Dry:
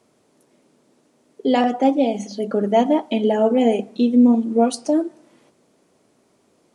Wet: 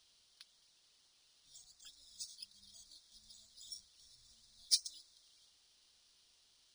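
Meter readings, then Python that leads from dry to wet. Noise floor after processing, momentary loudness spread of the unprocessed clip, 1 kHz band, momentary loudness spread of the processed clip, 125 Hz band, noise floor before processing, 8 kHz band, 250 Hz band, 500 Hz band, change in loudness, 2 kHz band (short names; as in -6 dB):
-71 dBFS, 8 LU, under -40 dB, 25 LU, n/a, -62 dBFS, -4.0 dB, under -40 dB, under -40 dB, -21.0 dB, -33.0 dB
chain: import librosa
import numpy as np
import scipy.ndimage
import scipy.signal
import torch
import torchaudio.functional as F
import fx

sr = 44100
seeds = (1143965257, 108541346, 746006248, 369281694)

y = scipy.signal.sosfilt(scipy.signal.cheby2(4, 70, [230.0, 2700.0], 'bandstop', fs=sr, output='sos'), x)
y = fx.high_shelf(y, sr, hz=4200.0, db=11.0)
y = np.interp(np.arange(len(y)), np.arange(len(y))[::3], y[::3])
y = F.gain(torch.from_numpy(y), 2.0).numpy()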